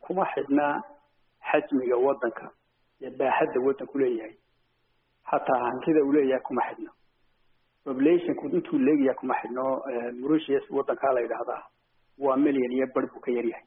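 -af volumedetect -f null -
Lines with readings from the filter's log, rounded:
mean_volume: -27.0 dB
max_volume: -8.1 dB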